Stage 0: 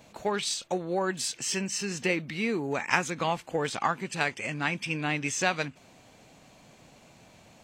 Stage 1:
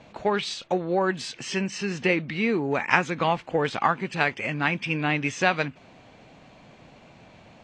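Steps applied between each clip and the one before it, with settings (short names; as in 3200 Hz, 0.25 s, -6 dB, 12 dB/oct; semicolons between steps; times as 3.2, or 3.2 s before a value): LPF 3500 Hz 12 dB/oct; gain +5 dB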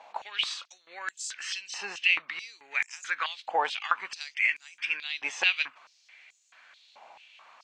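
stepped high-pass 4.6 Hz 830–7100 Hz; gain -3.5 dB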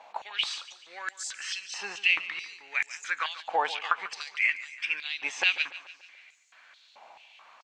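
feedback echo 0.144 s, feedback 53%, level -16 dB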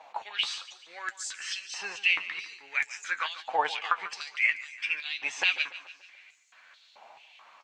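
flange 1.1 Hz, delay 6.2 ms, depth 5.6 ms, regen +42%; gain +3.5 dB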